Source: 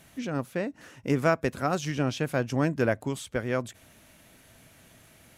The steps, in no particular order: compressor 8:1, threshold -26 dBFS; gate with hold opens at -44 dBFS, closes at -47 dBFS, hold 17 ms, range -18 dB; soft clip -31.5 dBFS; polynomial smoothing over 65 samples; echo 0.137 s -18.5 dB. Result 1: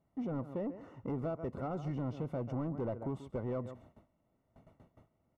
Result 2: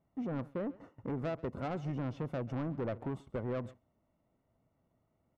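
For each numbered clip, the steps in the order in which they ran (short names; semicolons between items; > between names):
echo > compressor > soft clip > gate with hold > polynomial smoothing; polynomial smoothing > compressor > soft clip > echo > gate with hold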